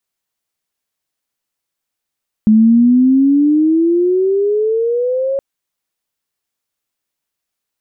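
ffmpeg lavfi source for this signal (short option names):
-f lavfi -i "aevalsrc='pow(10,(-5-9*t/2.92)/20)*sin(2*PI*213*2.92/(16.5*log(2)/12)*(exp(16.5*log(2)/12*t/2.92)-1))':d=2.92:s=44100"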